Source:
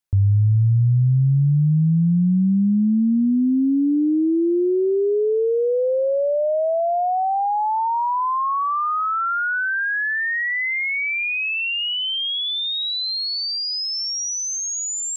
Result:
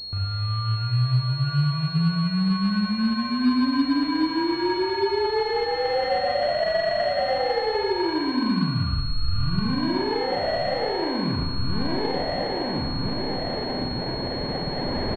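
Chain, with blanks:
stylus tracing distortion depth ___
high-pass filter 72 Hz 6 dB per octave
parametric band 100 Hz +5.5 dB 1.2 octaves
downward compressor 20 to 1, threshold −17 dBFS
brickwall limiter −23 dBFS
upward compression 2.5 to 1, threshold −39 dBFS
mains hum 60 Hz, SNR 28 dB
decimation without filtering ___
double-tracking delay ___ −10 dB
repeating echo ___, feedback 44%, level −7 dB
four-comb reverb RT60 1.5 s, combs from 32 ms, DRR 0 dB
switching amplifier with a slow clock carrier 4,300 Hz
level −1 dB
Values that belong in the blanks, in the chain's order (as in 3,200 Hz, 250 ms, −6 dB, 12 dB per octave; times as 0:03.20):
0.082 ms, 34×, 48 ms, 116 ms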